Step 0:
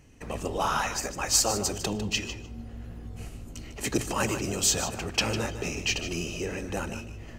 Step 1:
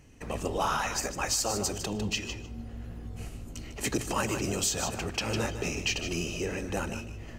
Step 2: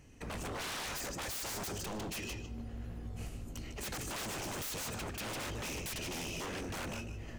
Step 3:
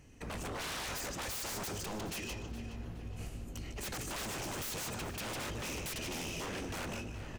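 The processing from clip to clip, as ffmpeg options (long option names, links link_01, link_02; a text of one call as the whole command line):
ffmpeg -i in.wav -af "alimiter=limit=-17.5dB:level=0:latency=1:release=178" out.wav
ffmpeg -i in.wav -af "aeval=exprs='0.0237*(abs(mod(val(0)/0.0237+3,4)-2)-1)':channel_layout=same,volume=-2.5dB" out.wav
ffmpeg -i in.wav -filter_complex "[0:a]asplit=2[link_01][link_02];[link_02]adelay=419,lowpass=frequency=4600:poles=1,volume=-11dB,asplit=2[link_03][link_04];[link_04]adelay=419,lowpass=frequency=4600:poles=1,volume=0.49,asplit=2[link_05][link_06];[link_06]adelay=419,lowpass=frequency=4600:poles=1,volume=0.49,asplit=2[link_07][link_08];[link_08]adelay=419,lowpass=frequency=4600:poles=1,volume=0.49,asplit=2[link_09][link_10];[link_10]adelay=419,lowpass=frequency=4600:poles=1,volume=0.49[link_11];[link_01][link_03][link_05][link_07][link_09][link_11]amix=inputs=6:normalize=0" out.wav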